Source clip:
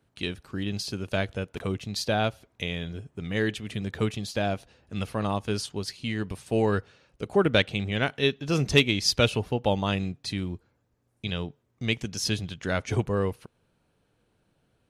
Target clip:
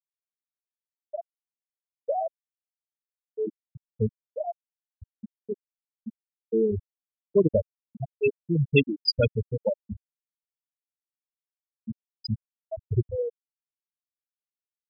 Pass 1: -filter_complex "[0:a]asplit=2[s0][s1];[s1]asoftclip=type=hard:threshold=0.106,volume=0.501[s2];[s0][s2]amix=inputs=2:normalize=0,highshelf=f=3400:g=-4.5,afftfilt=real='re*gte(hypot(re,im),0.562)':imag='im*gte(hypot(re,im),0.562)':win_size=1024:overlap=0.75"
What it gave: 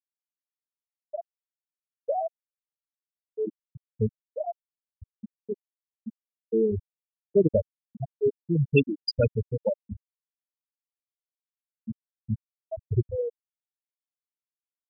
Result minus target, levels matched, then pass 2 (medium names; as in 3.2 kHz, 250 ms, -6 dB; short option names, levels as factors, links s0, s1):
4 kHz band -5.5 dB
-filter_complex "[0:a]asplit=2[s0][s1];[s1]asoftclip=type=hard:threshold=0.106,volume=0.501[s2];[s0][s2]amix=inputs=2:normalize=0,afftfilt=real='re*gte(hypot(re,im),0.562)':imag='im*gte(hypot(re,im),0.562)':win_size=1024:overlap=0.75"